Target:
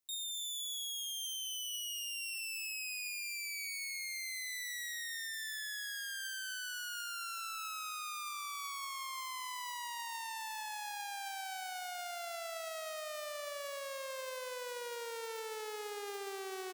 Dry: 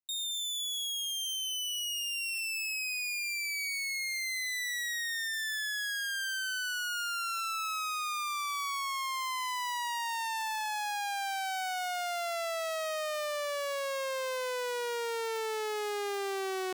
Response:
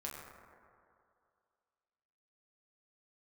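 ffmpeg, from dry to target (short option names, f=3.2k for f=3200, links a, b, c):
-filter_complex "[0:a]highshelf=f=5.1k:g=6.5,alimiter=level_in=13dB:limit=-24dB:level=0:latency=1,volume=-13dB,aeval=exprs='0.0944*(cos(1*acos(clip(val(0)/0.0944,-1,1)))-cos(1*PI/2))+0.00168*(cos(2*acos(clip(val(0)/0.0944,-1,1)))-cos(2*PI/2))':c=same,asplit=2[a][b];[b]adelay=289,lowpass=f=4.4k:p=1,volume=-11.5dB,asplit=2[c][d];[d]adelay=289,lowpass=f=4.4k:p=1,volume=0.53,asplit=2[e][f];[f]adelay=289,lowpass=f=4.4k:p=1,volume=0.53,asplit=2[g][h];[h]adelay=289,lowpass=f=4.4k:p=1,volume=0.53,asplit=2[i][j];[j]adelay=289,lowpass=f=4.4k:p=1,volume=0.53,asplit=2[k][l];[l]adelay=289,lowpass=f=4.4k:p=1,volume=0.53[m];[a][c][e][g][i][k][m]amix=inputs=7:normalize=0,volume=4dB"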